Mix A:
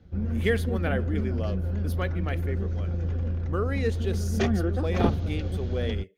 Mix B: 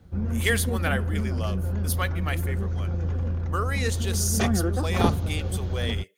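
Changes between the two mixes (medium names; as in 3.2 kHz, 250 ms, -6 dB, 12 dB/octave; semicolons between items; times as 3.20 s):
speech: add tilt EQ +4 dB/octave; master: add graphic EQ 125/1000/8000 Hz +3/+7/+7 dB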